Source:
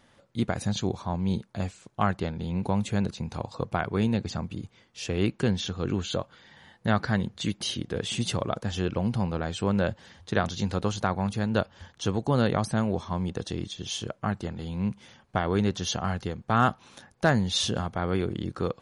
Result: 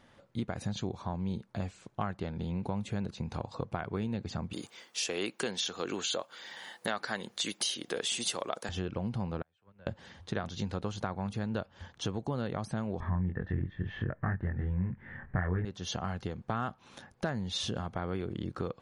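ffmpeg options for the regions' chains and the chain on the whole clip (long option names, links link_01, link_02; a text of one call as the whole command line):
ffmpeg -i in.wav -filter_complex "[0:a]asettb=1/sr,asplit=3[link_01][link_02][link_03];[link_01]atrim=end=4.534[link_04];[link_02]atrim=start=4.53:end=8.69,asetpts=PTS-STARTPTS,afade=type=in:duration=0.004:curve=qsin,afade=type=out:start_time=4.156:duration=0.004:curve=qsin,highpass=390,aemphasis=mode=production:type=75fm,acontrast=61[link_05];[link_03]atrim=start=8.686[link_06];[link_04][link_05]acrossfade=duration=0.004:curve1=hsin:curve2=qsin[link_07];[link_07][link_06]acrossfade=duration=0.004:curve1=qsin:curve2=hsin,asettb=1/sr,asplit=3[link_08][link_09][link_10];[link_08]atrim=end=9.424[link_11];[link_09]atrim=start=9.42:end=9.87,asetpts=PTS-STARTPTS,afade=type=in:duration=0.004:curve=qsin,afade=type=out:start_time=0.446:duration=0.004:curve=qsin,acrossover=split=490 2400:gain=0.141 1 0.0794[link_12][link_13][link_14];[link_12][link_13][link_14]amix=inputs=3:normalize=0,acrossover=split=170|3000[link_15][link_16][link_17];[link_16]acompressor=threshold=-57dB:ratio=2:attack=3.2:release=140:knee=2.83:detection=peak[link_18];[link_15][link_18][link_17]amix=inputs=3:normalize=0,agate=range=-26dB:threshold=-42dB:ratio=16:release=100:detection=peak[link_19];[link_10]atrim=start=9.866[link_20];[link_11][link_19]acrossfade=duration=0.004:curve1=hsin:curve2=qsin[link_21];[link_21][link_20]acrossfade=duration=0.004:curve1=qsin:curve2=hsin,asettb=1/sr,asplit=3[link_22][link_23][link_24];[link_22]atrim=end=13.004[link_25];[link_23]atrim=start=13:end=15.65,asetpts=PTS-STARTPTS,afade=type=in:duration=0.004:curve=qsin,afade=type=out:start_time=2.646:duration=0.004:curve=qsin,lowpass=frequency=1800:width_type=q:width=12,aemphasis=mode=reproduction:type=riaa,asplit=2[link_26][link_27];[link_27]adelay=22,volume=-3dB[link_28];[link_26][link_28]amix=inputs=2:normalize=0,atrim=end_sample=116865[link_29];[link_24]atrim=start=15.646[link_30];[link_25][link_29]acrossfade=duration=0.004:curve1=hsin:curve2=qsin[link_31];[link_31][link_30]acrossfade=duration=0.004:curve1=qsin:curve2=hsin,highshelf=frequency=5200:gain=-7.5,acompressor=threshold=-32dB:ratio=4" out.wav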